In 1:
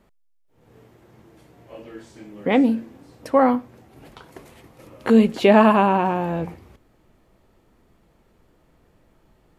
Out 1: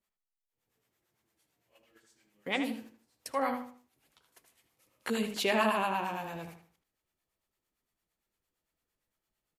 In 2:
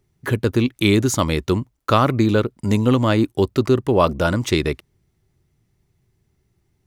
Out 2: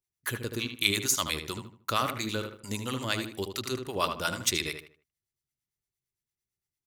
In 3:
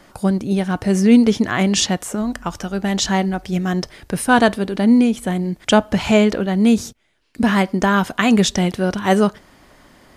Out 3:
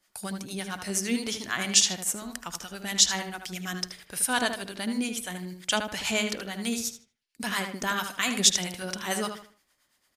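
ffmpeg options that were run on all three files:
ffmpeg -i in.wav -filter_complex "[0:a]acrossover=split=630[link_01][link_02];[link_01]aeval=exprs='val(0)*(1-0.7/2+0.7/2*cos(2*PI*8.8*n/s))':channel_layout=same[link_03];[link_02]aeval=exprs='val(0)*(1-0.7/2-0.7/2*cos(2*PI*8.8*n/s))':channel_layout=same[link_04];[link_03][link_04]amix=inputs=2:normalize=0,tiltshelf=frequency=1100:gain=-7.5,agate=range=-14dB:threshold=-43dB:ratio=16:detection=peak,highshelf=frequency=4900:gain=9.5,asplit=2[link_05][link_06];[link_06]adelay=77,lowpass=frequency=3000:poles=1,volume=-6.5dB,asplit=2[link_07][link_08];[link_08]adelay=77,lowpass=frequency=3000:poles=1,volume=0.33,asplit=2[link_09][link_10];[link_10]adelay=77,lowpass=frequency=3000:poles=1,volume=0.33,asplit=2[link_11][link_12];[link_12]adelay=77,lowpass=frequency=3000:poles=1,volume=0.33[link_13];[link_07][link_09][link_11][link_13]amix=inputs=4:normalize=0[link_14];[link_05][link_14]amix=inputs=2:normalize=0,volume=-9dB" out.wav

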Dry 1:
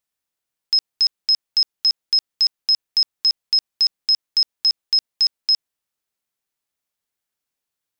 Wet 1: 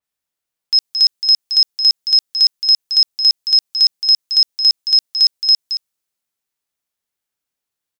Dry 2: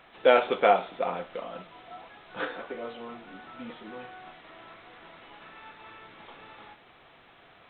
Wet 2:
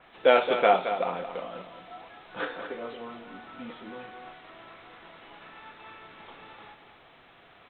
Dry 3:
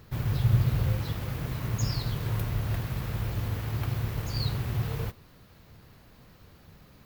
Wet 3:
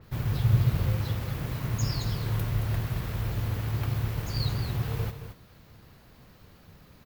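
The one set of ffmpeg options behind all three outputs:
ffmpeg -i in.wav -af "aecho=1:1:221:0.335,adynamicequalizer=threshold=0.0282:dfrequency=3700:dqfactor=0.7:tfrequency=3700:tqfactor=0.7:attack=5:release=100:ratio=0.375:range=3.5:mode=boostabove:tftype=highshelf" out.wav

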